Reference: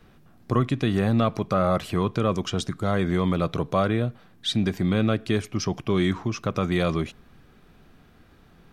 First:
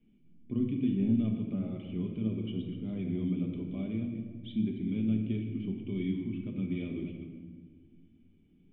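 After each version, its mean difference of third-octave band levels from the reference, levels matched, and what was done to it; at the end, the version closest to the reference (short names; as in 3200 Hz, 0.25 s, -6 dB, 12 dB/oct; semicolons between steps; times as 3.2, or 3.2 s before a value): 10.0 dB: reverse delay 0.145 s, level -10 dB; flange 1.7 Hz, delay 7.8 ms, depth 4.3 ms, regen +60%; vocal tract filter i; shoebox room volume 1700 m³, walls mixed, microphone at 1.3 m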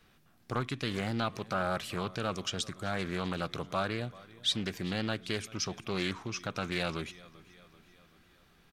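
6.0 dB: tilt shelf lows -6 dB, about 1300 Hz; feedback echo 0.387 s, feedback 56%, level -21 dB; Doppler distortion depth 0.35 ms; gain -6.5 dB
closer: second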